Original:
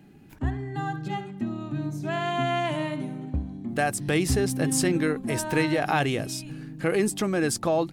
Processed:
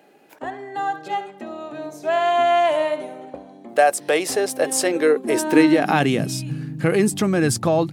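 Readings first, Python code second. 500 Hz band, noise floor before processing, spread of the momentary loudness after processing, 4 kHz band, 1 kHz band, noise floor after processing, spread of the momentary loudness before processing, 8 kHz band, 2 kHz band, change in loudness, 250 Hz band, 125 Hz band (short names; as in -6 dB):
+8.5 dB, -47 dBFS, 17 LU, +4.5 dB, +8.5 dB, -46 dBFS, 9 LU, +4.5 dB, +5.0 dB, +7.0 dB, +5.5 dB, +1.0 dB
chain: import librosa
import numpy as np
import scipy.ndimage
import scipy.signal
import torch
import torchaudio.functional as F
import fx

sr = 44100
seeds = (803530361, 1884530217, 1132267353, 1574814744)

y = fx.filter_sweep_highpass(x, sr, from_hz=550.0, to_hz=110.0, start_s=4.84, end_s=6.65, q=2.8)
y = y * librosa.db_to_amplitude(4.5)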